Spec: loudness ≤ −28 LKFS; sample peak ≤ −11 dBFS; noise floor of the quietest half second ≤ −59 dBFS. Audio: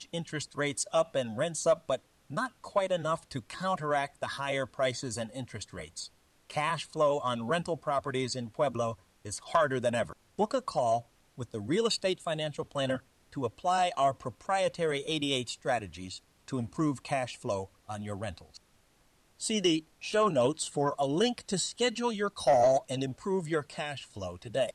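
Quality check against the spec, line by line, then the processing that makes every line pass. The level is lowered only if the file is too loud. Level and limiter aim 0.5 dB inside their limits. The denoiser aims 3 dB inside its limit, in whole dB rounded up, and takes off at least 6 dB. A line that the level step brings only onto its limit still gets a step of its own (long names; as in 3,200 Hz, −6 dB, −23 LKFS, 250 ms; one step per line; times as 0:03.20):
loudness −31.5 LKFS: in spec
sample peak −16.0 dBFS: in spec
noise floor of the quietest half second −66 dBFS: in spec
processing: no processing needed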